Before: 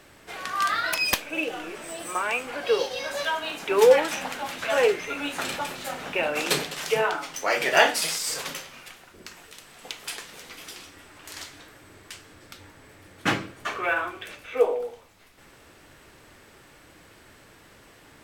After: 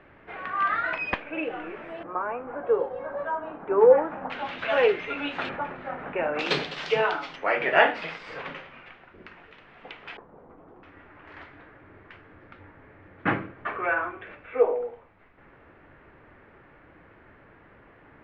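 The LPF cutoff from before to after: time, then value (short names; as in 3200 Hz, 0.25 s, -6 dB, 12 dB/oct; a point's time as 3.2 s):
LPF 24 dB/oct
2300 Hz
from 2.03 s 1300 Hz
from 4.3 s 3300 Hz
from 5.49 s 1900 Hz
from 6.39 s 4200 Hz
from 7.36 s 2500 Hz
from 10.17 s 1000 Hz
from 10.83 s 2100 Hz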